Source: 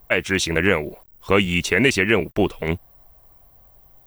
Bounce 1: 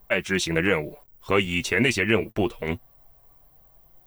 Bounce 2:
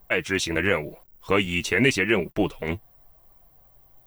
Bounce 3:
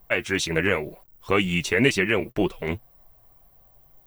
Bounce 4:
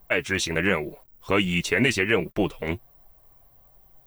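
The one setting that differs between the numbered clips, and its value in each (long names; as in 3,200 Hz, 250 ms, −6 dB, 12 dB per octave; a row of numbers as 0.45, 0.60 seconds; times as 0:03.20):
flanger, speed: 0.23, 0.9, 2, 1.3 Hertz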